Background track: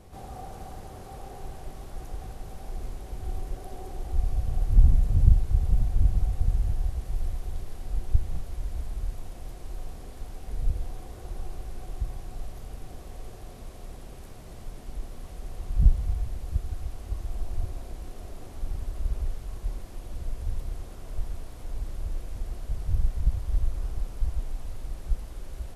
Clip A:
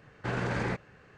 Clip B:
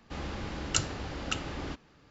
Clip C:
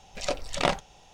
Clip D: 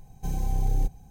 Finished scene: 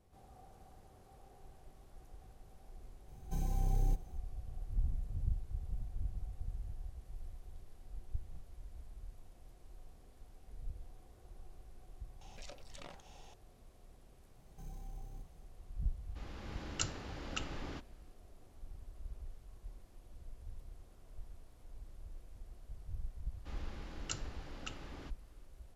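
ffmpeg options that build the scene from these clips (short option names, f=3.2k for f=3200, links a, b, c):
-filter_complex "[4:a]asplit=2[a][b];[2:a]asplit=2[c][d];[0:a]volume=-18dB[e];[3:a]acompressor=threshold=-45dB:ratio=6:attack=3.2:release=140:knee=1:detection=peak[f];[b]alimiter=level_in=2dB:limit=-24dB:level=0:latency=1:release=15,volume=-2dB[g];[c]dynaudnorm=f=110:g=7:m=7dB[h];[a]atrim=end=1.1,asetpts=PTS-STARTPTS,volume=-7.5dB,afade=t=in:d=0.004:c=hsin,afade=t=out:st=1.096:d=0.004:c=hsin,adelay=3080[i];[f]atrim=end=1.13,asetpts=PTS-STARTPTS,volume=-4.5dB,afade=t=in:d=0.004:c=hsin,afade=t=out:st=1.126:d=0.004:c=hsin,adelay=12210[j];[g]atrim=end=1.1,asetpts=PTS-STARTPTS,volume=-16dB,afade=t=in:d=0.004:c=hsin,afade=t=out:st=1.096:d=0.004:c=hsin,adelay=14350[k];[h]atrim=end=2.1,asetpts=PTS-STARTPTS,volume=-14.5dB,afade=t=in:d=0.004:c=hsin,afade=t=out:st=2.096:d=0.004:c=hsin,adelay=16050[l];[d]atrim=end=2.1,asetpts=PTS-STARTPTS,volume=-13dB,afade=t=in:d=0.004:c=hsin,afade=t=out:st=2.096:d=0.004:c=hsin,adelay=23350[m];[e][i][j][k][l][m]amix=inputs=6:normalize=0"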